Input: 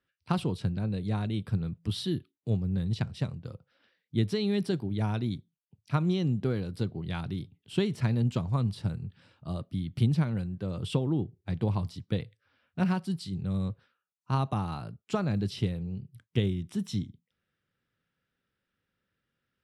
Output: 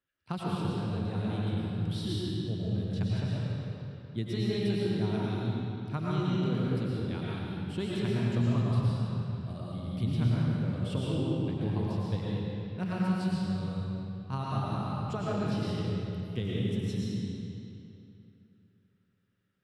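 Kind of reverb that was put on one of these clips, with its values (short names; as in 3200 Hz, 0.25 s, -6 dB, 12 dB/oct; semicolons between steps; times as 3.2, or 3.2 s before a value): digital reverb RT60 2.9 s, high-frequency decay 0.8×, pre-delay 70 ms, DRR -6.5 dB; gain -7.5 dB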